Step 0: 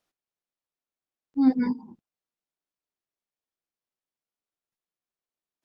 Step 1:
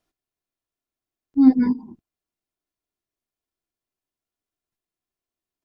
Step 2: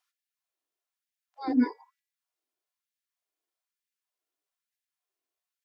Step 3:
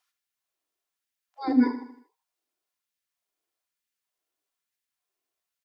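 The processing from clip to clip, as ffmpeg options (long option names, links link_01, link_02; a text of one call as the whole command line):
ffmpeg -i in.wav -af "lowshelf=frequency=310:gain=10.5,aecho=1:1:2.9:0.36" out.wav
ffmpeg -i in.wav -af "bandreject=frequency=280.8:width_type=h:width=4,bandreject=frequency=561.6:width_type=h:width=4,bandreject=frequency=842.4:width_type=h:width=4,bandreject=frequency=1123.2:width_type=h:width=4,bandreject=frequency=1404:width_type=h:width=4,bandreject=frequency=1684.8:width_type=h:width=4,bandreject=frequency=1965.6:width_type=h:width=4,bandreject=frequency=2246.4:width_type=h:width=4,bandreject=frequency=2527.2:width_type=h:width=4,bandreject=frequency=2808:width_type=h:width=4,afftfilt=real='re*gte(b*sr/1024,240*pow(1600/240,0.5+0.5*sin(2*PI*1.1*pts/sr)))':imag='im*gte(b*sr/1024,240*pow(1600/240,0.5+0.5*sin(2*PI*1.1*pts/sr)))':win_size=1024:overlap=0.75" out.wav
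ffmpeg -i in.wav -af "aecho=1:1:78|156|234|312|390:0.266|0.125|0.0588|0.0276|0.013,volume=3dB" out.wav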